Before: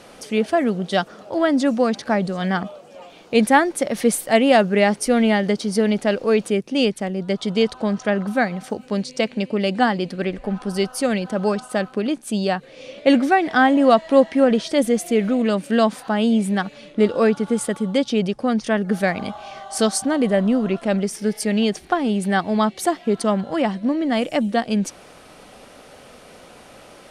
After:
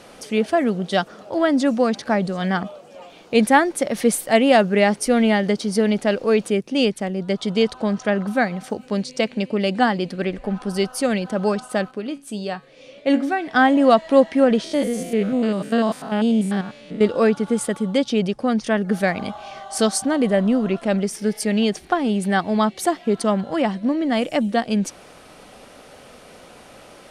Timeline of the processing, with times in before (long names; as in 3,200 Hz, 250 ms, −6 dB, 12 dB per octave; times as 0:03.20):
0:11.91–0:13.55: tuned comb filter 140 Hz, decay 0.29 s
0:14.64–0:17.01: spectrum averaged block by block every 100 ms